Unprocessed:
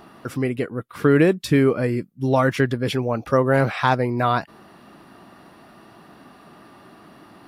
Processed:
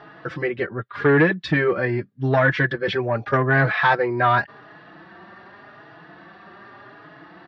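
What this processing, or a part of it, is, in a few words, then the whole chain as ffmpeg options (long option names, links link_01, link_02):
barber-pole flanger into a guitar amplifier: -filter_complex "[0:a]asplit=2[link_01][link_02];[link_02]adelay=4.3,afreqshift=0.85[link_03];[link_01][link_03]amix=inputs=2:normalize=1,asoftclip=type=tanh:threshold=-14dB,highpass=94,equalizer=frequency=240:width_type=q:width=4:gain=-10,equalizer=frequency=1700:width_type=q:width=4:gain=10,equalizer=frequency=2700:width_type=q:width=4:gain=-3,lowpass=frequency=4100:width=0.5412,lowpass=frequency=4100:width=1.3066,volume=5dB"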